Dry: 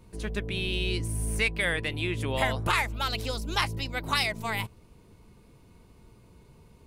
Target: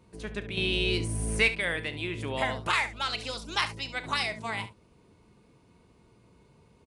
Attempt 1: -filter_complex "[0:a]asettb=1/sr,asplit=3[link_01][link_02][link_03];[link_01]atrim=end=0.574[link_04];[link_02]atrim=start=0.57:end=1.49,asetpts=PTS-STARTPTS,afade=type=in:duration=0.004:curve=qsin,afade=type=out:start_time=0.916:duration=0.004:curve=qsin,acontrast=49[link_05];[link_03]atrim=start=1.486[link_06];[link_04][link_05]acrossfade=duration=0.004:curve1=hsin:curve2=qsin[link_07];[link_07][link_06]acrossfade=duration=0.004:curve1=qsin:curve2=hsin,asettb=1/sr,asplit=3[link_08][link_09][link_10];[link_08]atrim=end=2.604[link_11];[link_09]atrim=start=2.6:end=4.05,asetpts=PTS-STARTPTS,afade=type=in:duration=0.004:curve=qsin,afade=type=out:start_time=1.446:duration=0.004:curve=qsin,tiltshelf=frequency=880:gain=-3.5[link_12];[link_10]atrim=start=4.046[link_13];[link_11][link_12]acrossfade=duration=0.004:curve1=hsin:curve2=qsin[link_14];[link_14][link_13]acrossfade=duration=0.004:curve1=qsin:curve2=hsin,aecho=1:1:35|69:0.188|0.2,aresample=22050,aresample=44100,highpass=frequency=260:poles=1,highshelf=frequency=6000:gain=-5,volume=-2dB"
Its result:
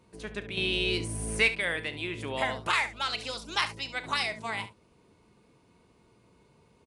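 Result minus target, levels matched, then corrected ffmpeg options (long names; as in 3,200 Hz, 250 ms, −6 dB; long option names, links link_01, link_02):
125 Hz band −4.0 dB
-filter_complex "[0:a]asettb=1/sr,asplit=3[link_01][link_02][link_03];[link_01]atrim=end=0.574[link_04];[link_02]atrim=start=0.57:end=1.49,asetpts=PTS-STARTPTS,afade=type=in:duration=0.004:curve=qsin,afade=type=out:start_time=0.916:duration=0.004:curve=qsin,acontrast=49[link_05];[link_03]atrim=start=1.486[link_06];[link_04][link_05]acrossfade=duration=0.004:curve1=hsin:curve2=qsin[link_07];[link_07][link_06]acrossfade=duration=0.004:curve1=qsin:curve2=hsin,asettb=1/sr,asplit=3[link_08][link_09][link_10];[link_08]atrim=end=2.604[link_11];[link_09]atrim=start=2.6:end=4.05,asetpts=PTS-STARTPTS,afade=type=in:duration=0.004:curve=qsin,afade=type=out:start_time=1.446:duration=0.004:curve=qsin,tiltshelf=frequency=880:gain=-3.5[link_12];[link_10]atrim=start=4.046[link_13];[link_11][link_12]acrossfade=duration=0.004:curve1=hsin:curve2=qsin[link_14];[link_14][link_13]acrossfade=duration=0.004:curve1=qsin:curve2=hsin,aecho=1:1:35|69:0.188|0.2,aresample=22050,aresample=44100,highpass=frequency=130:poles=1,highshelf=frequency=6000:gain=-5,volume=-2dB"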